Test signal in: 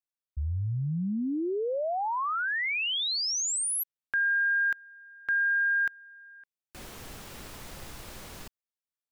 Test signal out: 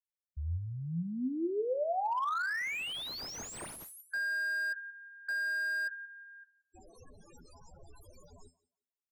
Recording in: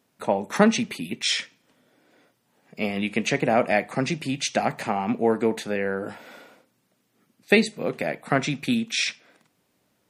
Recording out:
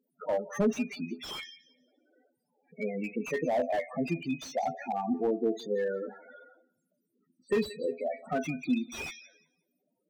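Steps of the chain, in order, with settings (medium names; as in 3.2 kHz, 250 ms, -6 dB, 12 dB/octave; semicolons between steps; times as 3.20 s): tone controls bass -5 dB, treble +7 dB; feedback comb 84 Hz, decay 0.22 s, harmonics all, mix 70%; in parallel at -9 dB: integer overflow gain 20.5 dB; on the sum: loudest bins only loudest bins 8; on a send: thinning echo 177 ms, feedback 20%, high-pass 200 Hz, level -21 dB; on the sum: slew-rate limiter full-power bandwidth 38 Hz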